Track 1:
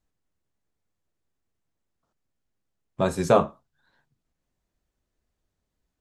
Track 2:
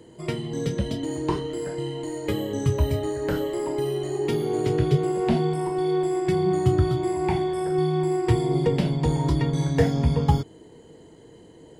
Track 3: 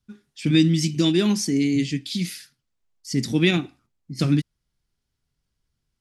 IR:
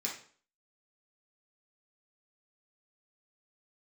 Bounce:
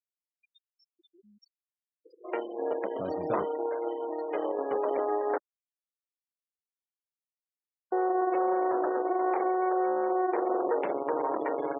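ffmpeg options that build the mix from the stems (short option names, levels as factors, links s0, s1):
-filter_complex "[0:a]equalizer=f=10000:t=o:w=2.8:g=3.5,volume=0.168[s0];[1:a]aeval=exprs='0.473*(cos(1*acos(clip(val(0)/0.473,-1,1)))-cos(1*PI/2))+0.0531*(cos(2*acos(clip(val(0)/0.473,-1,1)))-cos(2*PI/2))+0.00473*(cos(4*acos(clip(val(0)/0.473,-1,1)))-cos(4*PI/2))+0.00596*(cos(7*acos(clip(val(0)/0.473,-1,1)))-cos(7*PI/2))+0.0668*(cos(8*acos(clip(val(0)/0.473,-1,1)))-cos(8*PI/2))':c=same,lowpass=1600,equalizer=f=890:t=o:w=2.8:g=2.5,adelay=2050,volume=0.944,asplit=3[s1][s2][s3];[s1]atrim=end=5.38,asetpts=PTS-STARTPTS,afade=t=out:st=5.376:d=0.004:c=hsin[s4];[s2]atrim=start=5.38:end=7.92,asetpts=PTS-STARTPTS,volume=0[s5];[s3]atrim=start=7.92,asetpts=PTS-STARTPTS,afade=t=in:d=0.004:c=hsin[s6];[s4][s5][s6]concat=n=3:v=0:a=1[s7];[2:a]aecho=1:1:4.7:0.47,acompressor=threshold=0.0398:ratio=3,alimiter=limit=0.0631:level=0:latency=1:release=38,volume=0.106,asplit=2[s8][s9];[s9]volume=0.168[s10];[s7][s8]amix=inputs=2:normalize=0,highpass=f=390:w=0.5412,highpass=f=390:w=1.3066,alimiter=limit=0.112:level=0:latency=1:release=49,volume=1[s11];[3:a]atrim=start_sample=2205[s12];[s10][s12]afir=irnorm=-1:irlink=0[s13];[s0][s11][s13]amix=inputs=3:normalize=0,afftfilt=real='re*gte(hypot(re,im),0.0141)':imag='im*gte(hypot(re,im),0.0141)':win_size=1024:overlap=0.75"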